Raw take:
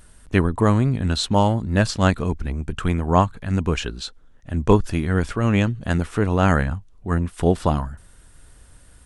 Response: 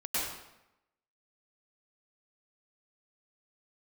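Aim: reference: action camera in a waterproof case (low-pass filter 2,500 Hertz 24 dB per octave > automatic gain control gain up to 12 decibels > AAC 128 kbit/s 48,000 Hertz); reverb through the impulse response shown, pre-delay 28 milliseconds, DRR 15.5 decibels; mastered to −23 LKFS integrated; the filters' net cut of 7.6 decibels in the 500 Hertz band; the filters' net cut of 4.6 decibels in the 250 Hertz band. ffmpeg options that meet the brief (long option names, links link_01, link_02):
-filter_complex "[0:a]equalizer=frequency=250:width_type=o:gain=-4.5,equalizer=frequency=500:width_type=o:gain=-8.5,asplit=2[link_01][link_02];[1:a]atrim=start_sample=2205,adelay=28[link_03];[link_02][link_03]afir=irnorm=-1:irlink=0,volume=-22.5dB[link_04];[link_01][link_04]amix=inputs=2:normalize=0,lowpass=frequency=2500:width=0.5412,lowpass=frequency=2500:width=1.3066,dynaudnorm=maxgain=12dB,volume=1dB" -ar 48000 -c:a aac -b:a 128k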